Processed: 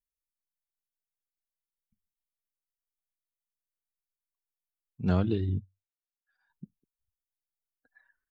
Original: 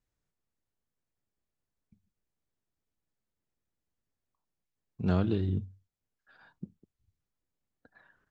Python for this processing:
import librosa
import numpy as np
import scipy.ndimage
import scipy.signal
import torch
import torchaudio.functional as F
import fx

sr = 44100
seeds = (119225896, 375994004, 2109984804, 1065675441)

y = fx.bin_expand(x, sr, power=1.5)
y = fx.upward_expand(y, sr, threshold_db=-53.0, expansion=1.5, at=(5.44, 6.5))
y = y * 10.0 ** (2.5 / 20.0)